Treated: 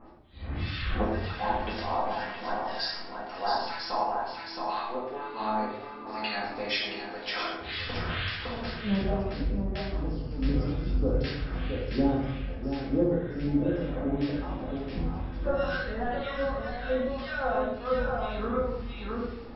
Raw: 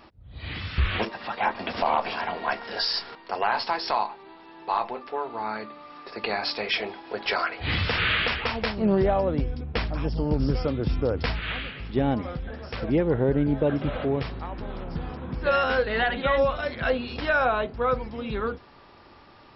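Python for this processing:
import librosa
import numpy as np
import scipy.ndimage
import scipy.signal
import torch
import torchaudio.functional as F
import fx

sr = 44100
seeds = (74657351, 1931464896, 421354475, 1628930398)

p1 = fx.harmonic_tremolo(x, sr, hz=2.0, depth_pct=100, crossover_hz=1300.0)
p2 = p1 + fx.echo_single(p1, sr, ms=670, db=-6.0, dry=0)
p3 = fx.dynamic_eq(p2, sr, hz=2400.0, q=2.5, threshold_db=-45.0, ratio=4.0, max_db=-5)
p4 = fx.rider(p3, sr, range_db=10, speed_s=2.0)
p5 = fx.room_shoebox(p4, sr, seeds[0], volume_m3=210.0, walls='mixed', distance_m=2.1)
y = F.gain(torch.from_numpy(p5), -9.0).numpy()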